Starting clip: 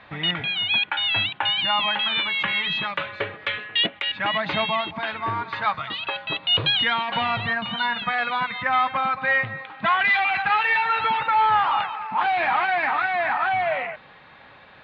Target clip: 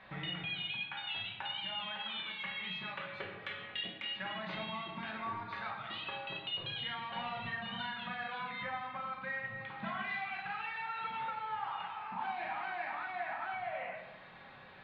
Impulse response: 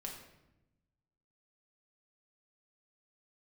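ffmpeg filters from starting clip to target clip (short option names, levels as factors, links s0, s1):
-filter_complex "[0:a]acompressor=threshold=0.0251:ratio=6[s0];[1:a]atrim=start_sample=2205,asetrate=41013,aresample=44100[s1];[s0][s1]afir=irnorm=-1:irlink=0,volume=0.596"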